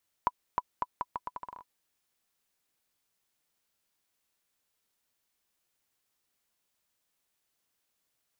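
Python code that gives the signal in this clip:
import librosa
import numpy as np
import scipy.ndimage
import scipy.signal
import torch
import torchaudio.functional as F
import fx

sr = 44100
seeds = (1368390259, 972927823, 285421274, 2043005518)

y = fx.bouncing_ball(sr, first_gap_s=0.31, ratio=0.78, hz=990.0, decay_ms=40.0, level_db=-13.5)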